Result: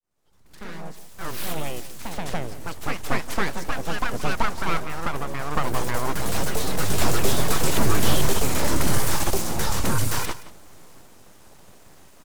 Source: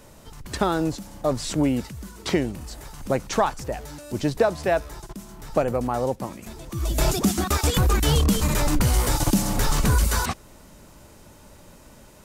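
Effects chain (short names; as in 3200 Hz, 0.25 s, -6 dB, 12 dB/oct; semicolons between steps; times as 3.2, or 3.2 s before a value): opening faded in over 3.75 s; 0.97–2.17 high shelf 2300 Hz +12 dB; full-wave rectifier; echoes that change speed 99 ms, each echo +2 st, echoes 2; echo 0.172 s -16 dB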